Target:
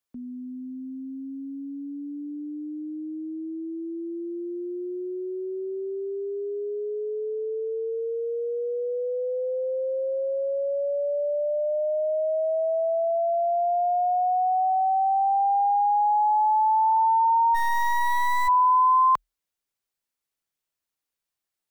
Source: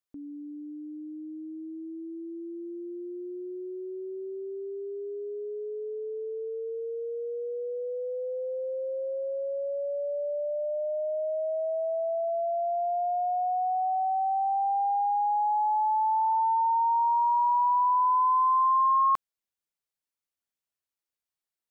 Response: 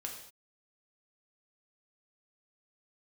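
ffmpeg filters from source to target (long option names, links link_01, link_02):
-filter_complex "[0:a]afreqshift=-41,asplit=3[link_01][link_02][link_03];[link_01]afade=type=out:start_time=17.54:duration=0.02[link_04];[link_02]acrusher=bits=4:dc=4:mix=0:aa=0.000001,afade=type=in:start_time=17.54:duration=0.02,afade=type=out:start_time=18.47:duration=0.02[link_05];[link_03]afade=type=in:start_time=18.47:duration=0.02[link_06];[link_04][link_05][link_06]amix=inputs=3:normalize=0,volume=4dB"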